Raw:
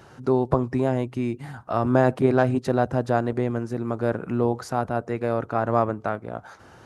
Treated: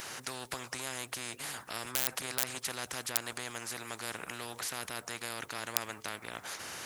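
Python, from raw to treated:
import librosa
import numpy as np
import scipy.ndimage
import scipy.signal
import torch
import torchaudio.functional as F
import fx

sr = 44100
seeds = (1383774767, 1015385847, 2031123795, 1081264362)

p1 = fx.peak_eq(x, sr, hz=1700.0, db=11.0, octaves=0.96)
p2 = (np.mod(10.0 ** (4.5 / 20.0) * p1 + 1.0, 2.0) - 1.0) / 10.0 ** (4.5 / 20.0)
p3 = p1 + (p2 * 10.0 ** (-7.0 / 20.0))
p4 = fx.riaa(p3, sr, side='recording')
p5 = fx.spectral_comp(p4, sr, ratio=4.0)
y = p5 * 10.0 ** (-9.0 / 20.0)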